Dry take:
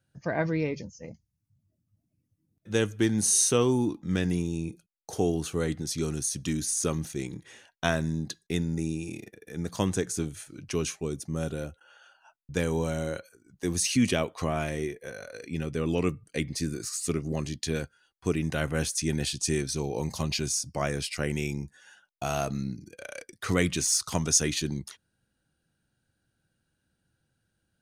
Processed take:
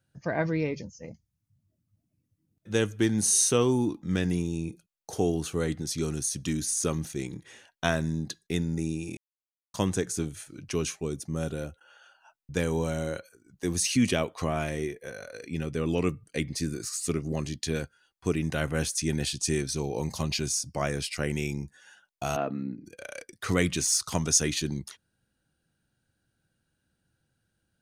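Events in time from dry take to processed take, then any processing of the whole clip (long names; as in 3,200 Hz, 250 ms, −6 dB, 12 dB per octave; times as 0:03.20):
0:09.17–0:09.74: silence
0:22.36–0:22.85: loudspeaker in its box 200–2,700 Hz, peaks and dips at 270 Hz +7 dB, 510 Hz +4 dB, 2,200 Hz −5 dB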